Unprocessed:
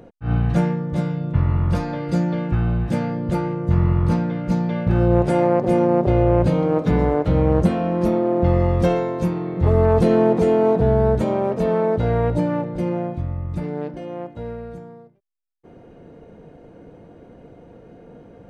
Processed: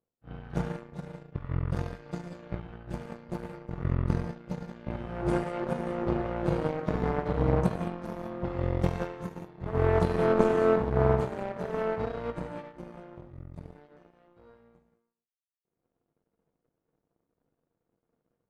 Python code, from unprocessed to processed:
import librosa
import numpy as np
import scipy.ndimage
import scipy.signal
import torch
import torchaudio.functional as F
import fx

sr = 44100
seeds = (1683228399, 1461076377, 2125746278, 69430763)

y = fx.rev_gated(x, sr, seeds[0], gate_ms=230, shape='flat', drr_db=-2.0)
y = fx.power_curve(y, sr, exponent=2.0)
y = y * librosa.db_to_amplitude(-5.0)